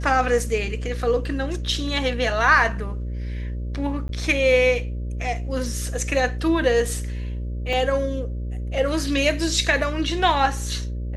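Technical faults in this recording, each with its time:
mains buzz 60 Hz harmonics 10 −28 dBFS
0:04.08–0:04.09: drop-out 12 ms
0:07.73: drop-out 2.3 ms

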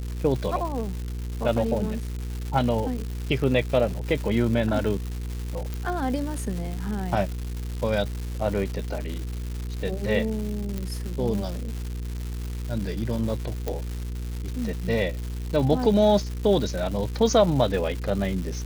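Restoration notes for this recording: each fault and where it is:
surface crackle 360 per second −31 dBFS
mains hum 60 Hz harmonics 8 −31 dBFS
0:05.74: click
0:10.78: click −17 dBFS
0:13.68: click −14 dBFS

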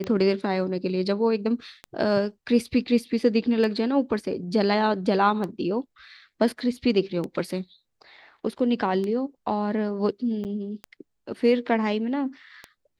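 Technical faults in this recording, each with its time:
scratch tick 33 1/3 rpm −19 dBFS
0:10.44–0:10.45: drop-out 8.7 ms

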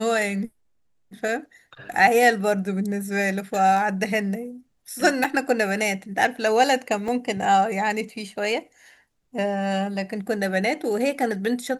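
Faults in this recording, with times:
0:05.24–0:05.25: drop-out 5.2 ms
0:07.08: drop-out 2.9 ms

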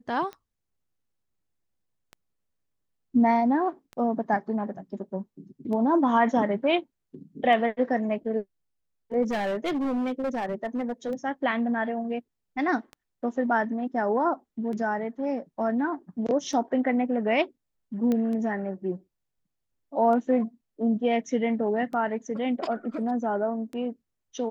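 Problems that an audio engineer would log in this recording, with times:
scratch tick 33 1/3 rpm −26 dBFS
0:09.22–0:11.12: clipping −24.5 dBFS
0:18.12: click −16 dBFS

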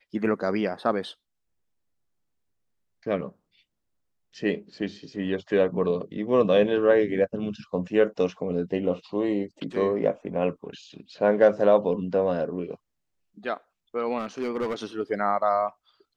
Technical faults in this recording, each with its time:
0:14.19–0:14.75: clipping −23 dBFS

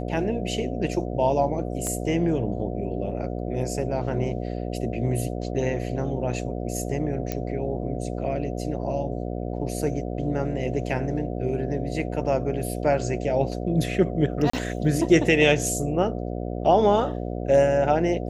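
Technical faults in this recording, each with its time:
mains buzz 60 Hz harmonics 12 −30 dBFS
0:01.87: click −17 dBFS
0:07.32: click −12 dBFS
0:14.50–0:14.53: drop-out 34 ms

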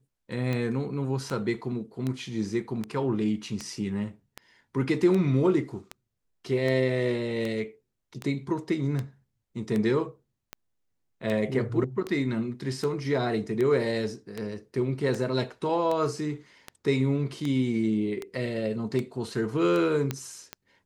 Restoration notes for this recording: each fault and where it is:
scratch tick 78 rpm −18 dBFS
0:20.11: click −14 dBFS

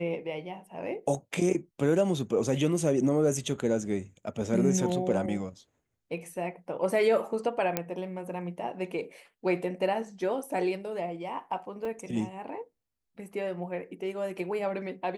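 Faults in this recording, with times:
0:07.77: click −11 dBFS
0:11.85: drop-out 2.9 ms

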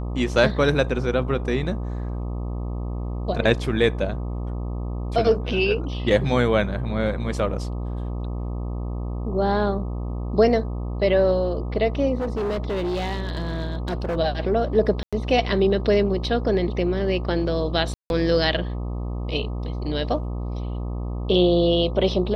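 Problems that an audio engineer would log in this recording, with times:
mains buzz 60 Hz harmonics 21 −28 dBFS
0:12.17–0:14.17: clipping −22 dBFS
0:15.03–0:15.13: drop-out 96 ms
0:17.94–0:18.10: drop-out 161 ms

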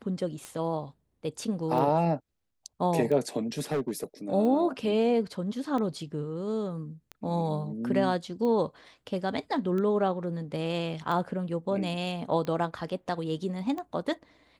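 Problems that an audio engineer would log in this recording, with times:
scratch tick 45 rpm −23 dBFS
0:03.58–0:04.04: clipping −24.5 dBFS

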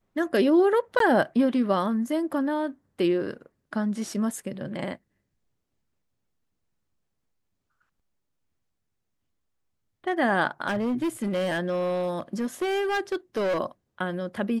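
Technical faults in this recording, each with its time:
0:00.99–0:01.00: drop-out 13 ms
0:10.68–0:13.58: clipping −22.5 dBFS

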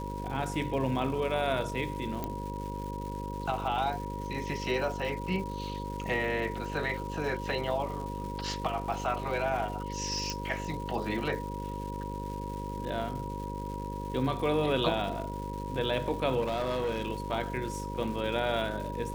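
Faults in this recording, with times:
mains buzz 50 Hz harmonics 11 −38 dBFS
surface crackle 400 per second −40 dBFS
whistle 960 Hz −39 dBFS
0:02.24: click −19 dBFS
0:10.30: click
0:16.40–0:17.11: clipping −26.5 dBFS

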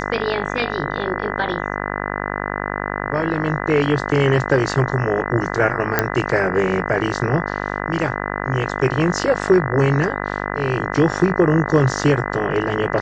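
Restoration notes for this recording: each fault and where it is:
mains buzz 50 Hz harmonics 40 −25 dBFS
0:05.99: click −1 dBFS

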